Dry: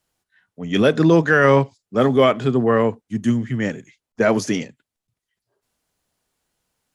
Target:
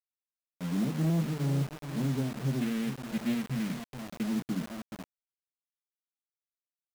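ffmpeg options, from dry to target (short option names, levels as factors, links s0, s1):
-filter_complex "[0:a]bandreject=f=50:t=h:w=6,bandreject=f=100:t=h:w=6,bandreject=f=150:t=h:w=6,bandreject=f=200:t=h:w=6,bandreject=f=250:t=h:w=6,bandreject=f=300:t=h:w=6,acrossover=split=160[s0][s1];[s0]acompressor=threshold=0.0447:ratio=6[s2];[s2][s1]amix=inputs=2:normalize=0,firequalizer=gain_entry='entry(180,0);entry(520,-28);entry(1100,-27);entry(2600,-17)':delay=0.05:min_phase=1,afwtdn=0.0224,aeval=exprs='sgn(val(0))*max(abs(val(0))-0.0112,0)':c=same,asettb=1/sr,asplit=3[s3][s4][s5];[s3]atrim=end=2.614[s6];[s4]atrim=start=2.61:end=4.23,asetpts=PTS-STARTPTS,afade=t=in:d=0.004:c=qsin,afade=t=out:st=1.616:d=0.004:c=qsin,highshelf=f=1500:t=q:w=1.5:g=11[s7];[s5]atrim=start=4.226[s8];[s6][s7]acrossfade=d=0.004:c1=hsin:c2=qsin[s9];[s9][s8]acrossfade=d=0.004:c1=qsin:c2=hsin,aecho=1:1:424|848|1272:0.2|0.0638|0.0204,asoftclip=type=tanh:threshold=0.0668,afftfilt=real='re*between(b*sr/4096,120,4300)':imag='im*between(b*sr/4096,120,4300)':win_size=4096:overlap=0.75,acrusher=bits=6:mix=0:aa=0.000001"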